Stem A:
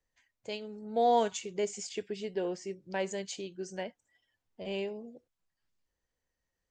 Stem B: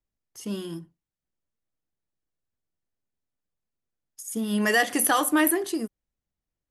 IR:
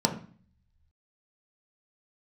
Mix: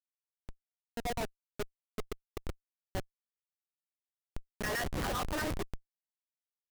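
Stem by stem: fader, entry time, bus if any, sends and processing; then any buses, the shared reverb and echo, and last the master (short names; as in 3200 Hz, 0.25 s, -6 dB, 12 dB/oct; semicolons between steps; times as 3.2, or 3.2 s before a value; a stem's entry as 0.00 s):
-5.5 dB, 0.00 s, send -16 dB, auto duck -17 dB, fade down 1.30 s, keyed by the second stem
-2.0 dB, 0.00 s, no send, stepped spectrum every 0.1 s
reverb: on, RT60 0.45 s, pre-delay 3 ms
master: high shelf 7100 Hz -6.5 dB; LFO high-pass saw down 8 Hz 410–2300 Hz; Schmitt trigger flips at -27 dBFS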